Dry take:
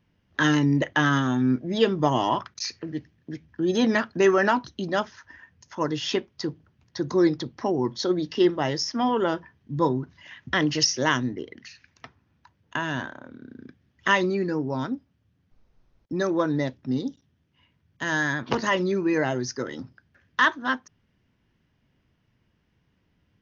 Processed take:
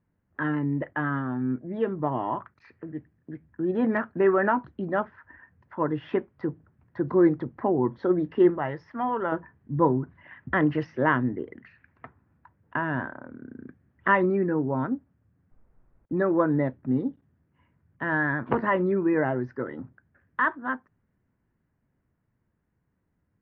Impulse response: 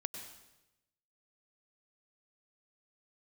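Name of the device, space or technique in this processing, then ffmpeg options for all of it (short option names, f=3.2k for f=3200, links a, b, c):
action camera in a waterproof case: -filter_complex "[0:a]asettb=1/sr,asplit=3[a][b][c];[a]atrim=end=8.584[d];[b]atrim=start=8.58:end=9.32,asetpts=PTS-STARTPTS,afade=t=in:d=0.004:c=qsin,afade=t=out:st=0.736:d=0.004:c=qsin,equalizer=f=280:w=0.53:g=-9[e];[c]atrim=start=9.316[f];[d][e]acrossfade=d=0.004:c1=hsin:c2=qsin[g];[g][f]acrossfade=d=0.004:c1=qsin:c2=hsin,lowpass=f=1.8k:w=0.5412,lowpass=f=1.8k:w=1.3066,dynaudnorm=f=240:g=31:m=10dB,volume=-6dB" -ar 32000 -c:a aac -b:a 64k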